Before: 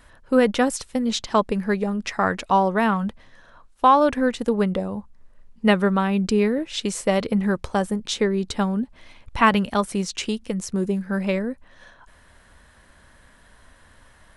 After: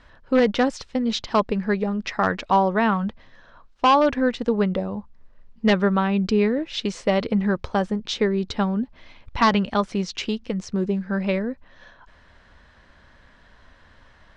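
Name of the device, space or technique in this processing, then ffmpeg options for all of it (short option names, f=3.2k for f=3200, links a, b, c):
synthesiser wavefolder: -af "aeval=exprs='0.335*(abs(mod(val(0)/0.335+3,4)-2)-1)':c=same,lowpass=f=5.5k:w=0.5412,lowpass=f=5.5k:w=1.3066"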